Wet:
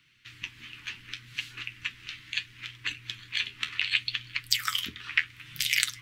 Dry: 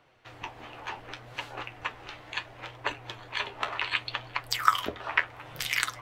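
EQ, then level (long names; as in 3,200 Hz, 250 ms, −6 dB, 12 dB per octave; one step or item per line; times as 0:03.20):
Chebyshev band-stop filter 180–2,400 Hz, order 2
low-shelf EQ 200 Hz −11 dB
dynamic equaliser 1,100 Hz, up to −4 dB, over −46 dBFS, Q 0.73
+6.0 dB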